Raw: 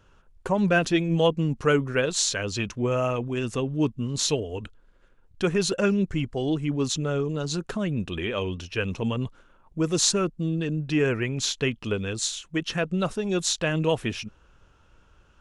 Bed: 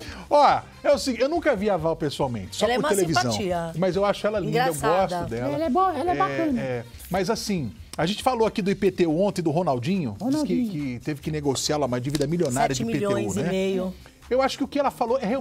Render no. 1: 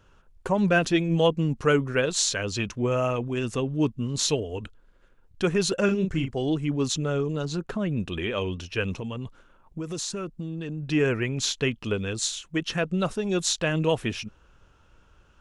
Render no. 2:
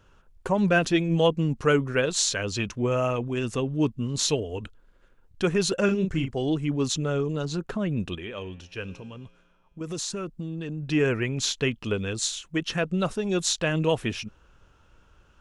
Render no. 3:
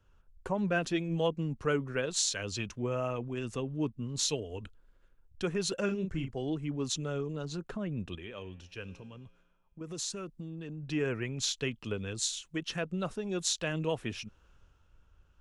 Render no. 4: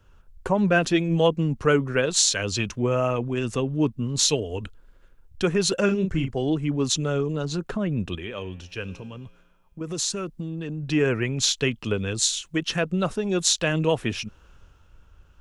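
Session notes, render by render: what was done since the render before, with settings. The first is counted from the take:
5.85–6.34 s: doubling 37 ms -6.5 dB; 7.45–7.91 s: treble shelf 3.8 kHz -9.5 dB; 8.98–10.83 s: compression, threshold -29 dBFS
8.15–9.81 s: feedback comb 59 Hz, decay 1.9 s, harmonics odd
compression 1.5:1, threshold -46 dBFS, peak gain reduction 10.5 dB; three bands expanded up and down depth 40%
trim +10 dB

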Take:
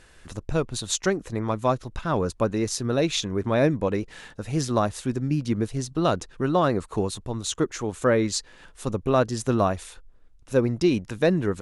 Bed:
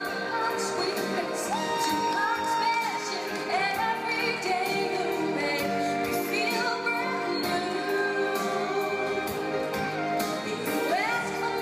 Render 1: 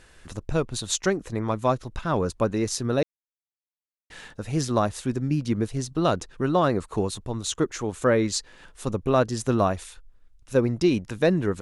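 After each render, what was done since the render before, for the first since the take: 3.03–4.10 s: mute; 9.84–10.55 s: peaking EQ 420 Hz -7.5 dB 2.8 oct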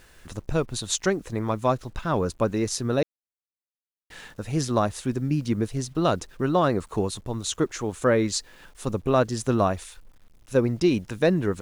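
bit crusher 10-bit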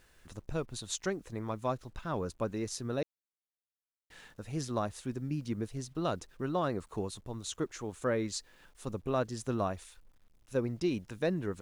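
trim -10.5 dB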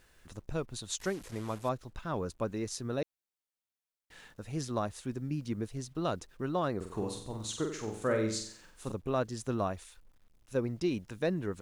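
1.00–1.69 s: one-bit delta coder 64 kbps, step -44 dBFS; 6.76–8.92 s: flutter echo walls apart 7.8 m, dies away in 0.55 s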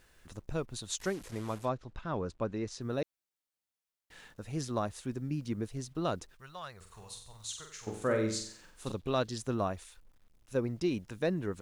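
1.65–2.81 s: distance through air 95 m; 6.35–7.87 s: amplifier tone stack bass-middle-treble 10-0-10; 8.86–9.38 s: peaking EQ 3.8 kHz +10.5 dB 1 oct

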